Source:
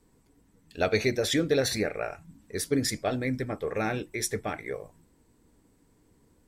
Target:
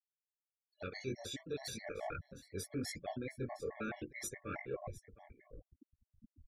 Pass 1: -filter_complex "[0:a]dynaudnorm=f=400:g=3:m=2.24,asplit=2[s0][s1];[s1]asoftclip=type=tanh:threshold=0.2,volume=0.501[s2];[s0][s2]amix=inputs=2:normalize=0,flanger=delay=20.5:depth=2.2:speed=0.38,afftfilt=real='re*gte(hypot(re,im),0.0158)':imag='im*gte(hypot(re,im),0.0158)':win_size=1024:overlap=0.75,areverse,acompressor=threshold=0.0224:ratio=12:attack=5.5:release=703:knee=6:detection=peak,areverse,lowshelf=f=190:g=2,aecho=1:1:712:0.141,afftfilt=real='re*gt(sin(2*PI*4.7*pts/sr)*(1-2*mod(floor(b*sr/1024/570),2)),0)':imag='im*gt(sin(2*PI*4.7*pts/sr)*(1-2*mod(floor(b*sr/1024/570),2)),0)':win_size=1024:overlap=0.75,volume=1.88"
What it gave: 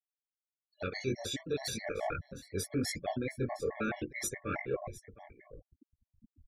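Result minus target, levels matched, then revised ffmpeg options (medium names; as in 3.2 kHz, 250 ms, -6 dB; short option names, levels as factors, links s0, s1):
compression: peak gain reduction -7 dB
-filter_complex "[0:a]dynaudnorm=f=400:g=3:m=2.24,asplit=2[s0][s1];[s1]asoftclip=type=tanh:threshold=0.2,volume=0.501[s2];[s0][s2]amix=inputs=2:normalize=0,flanger=delay=20.5:depth=2.2:speed=0.38,afftfilt=real='re*gte(hypot(re,im),0.0158)':imag='im*gte(hypot(re,im),0.0158)':win_size=1024:overlap=0.75,areverse,acompressor=threshold=0.00944:ratio=12:attack=5.5:release=703:knee=6:detection=peak,areverse,lowshelf=f=190:g=2,aecho=1:1:712:0.141,afftfilt=real='re*gt(sin(2*PI*4.7*pts/sr)*(1-2*mod(floor(b*sr/1024/570),2)),0)':imag='im*gt(sin(2*PI*4.7*pts/sr)*(1-2*mod(floor(b*sr/1024/570),2)),0)':win_size=1024:overlap=0.75,volume=1.88"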